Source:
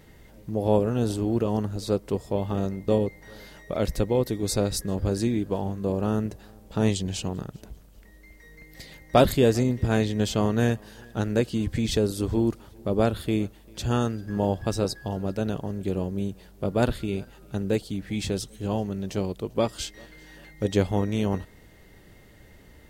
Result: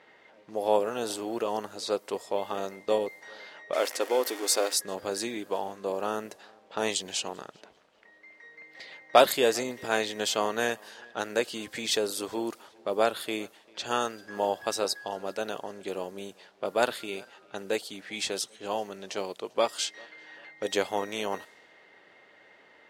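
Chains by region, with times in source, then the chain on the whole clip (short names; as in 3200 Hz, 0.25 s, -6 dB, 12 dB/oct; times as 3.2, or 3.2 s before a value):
3.73–4.74 zero-crossing step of -33.5 dBFS + brick-wall FIR high-pass 230 Hz + notch 3900 Hz
whole clip: low-pass opened by the level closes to 2600 Hz, open at -23.5 dBFS; HPF 630 Hz 12 dB/oct; gain +3.5 dB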